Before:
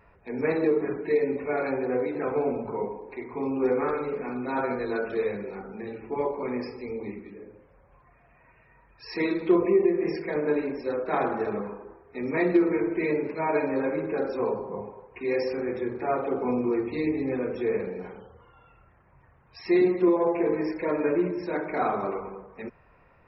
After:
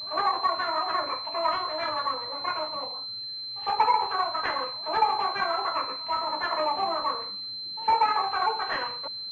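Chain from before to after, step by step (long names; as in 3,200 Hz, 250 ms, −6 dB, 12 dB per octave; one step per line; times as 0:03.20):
backwards echo 264 ms −20 dB
change of speed 2.5×
switching amplifier with a slow clock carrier 4,100 Hz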